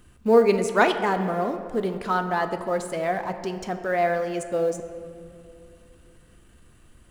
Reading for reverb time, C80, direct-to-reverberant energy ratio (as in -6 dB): 2.5 s, 10.5 dB, 7.5 dB